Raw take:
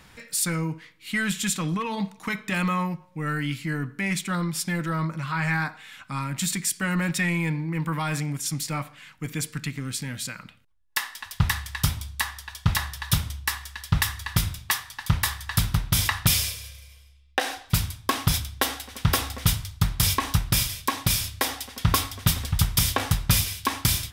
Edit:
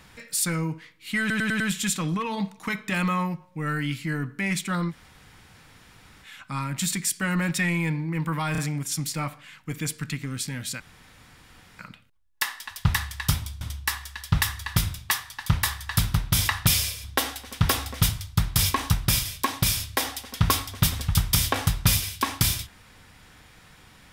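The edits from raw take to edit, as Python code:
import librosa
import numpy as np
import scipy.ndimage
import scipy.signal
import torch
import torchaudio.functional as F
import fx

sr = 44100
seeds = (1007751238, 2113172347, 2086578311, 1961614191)

y = fx.edit(x, sr, fx.stutter(start_s=1.2, slice_s=0.1, count=5),
    fx.room_tone_fill(start_s=4.51, length_s=1.34, crossfade_s=0.06),
    fx.stutter(start_s=8.12, slice_s=0.03, count=3),
    fx.insert_room_tone(at_s=10.34, length_s=0.99),
    fx.cut(start_s=12.16, length_s=1.05),
    fx.cut(start_s=16.64, length_s=1.84), tone=tone)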